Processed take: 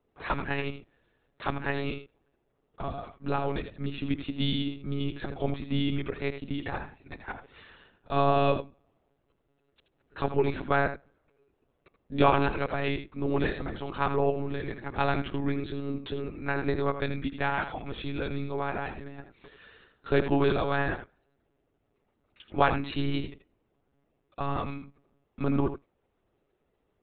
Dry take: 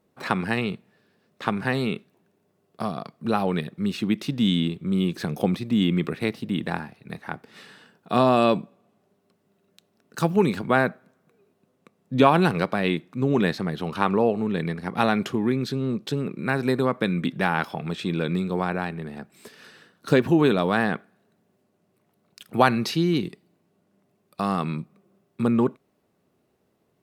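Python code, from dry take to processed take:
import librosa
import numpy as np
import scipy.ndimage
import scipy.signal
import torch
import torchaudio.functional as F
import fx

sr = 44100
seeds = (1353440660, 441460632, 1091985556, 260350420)

y = fx.peak_eq(x, sr, hz=140.0, db=-6.5, octaves=0.88)
y = y + 10.0 ** (-10.0 / 20.0) * np.pad(y, (int(81 * sr / 1000.0), 0))[:len(y)]
y = fx.lpc_monotone(y, sr, seeds[0], pitch_hz=140.0, order=16)
y = y * librosa.db_to_amplitude(-4.5)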